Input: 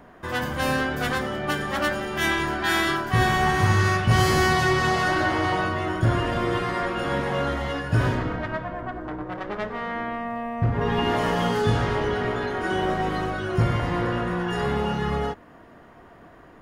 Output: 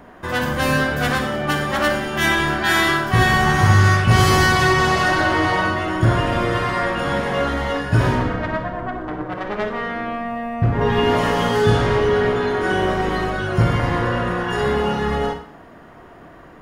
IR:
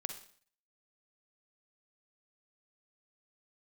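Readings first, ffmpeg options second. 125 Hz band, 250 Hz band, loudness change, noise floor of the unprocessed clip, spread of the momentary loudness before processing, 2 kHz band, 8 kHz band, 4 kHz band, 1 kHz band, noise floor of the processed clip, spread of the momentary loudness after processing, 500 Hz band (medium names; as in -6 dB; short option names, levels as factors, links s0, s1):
+5.5 dB, +4.5 dB, +5.5 dB, -49 dBFS, 10 LU, +6.0 dB, +6.0 dB, +5.5 dB, +5.0 dB, -43 dBFS, 11 LU, +6.0 dB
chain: -filter_complex "[1:a]atrim=start_sample=2205[s0];[0:a][s0]afir=irnorm=-1:irlink=0,volume=2.11"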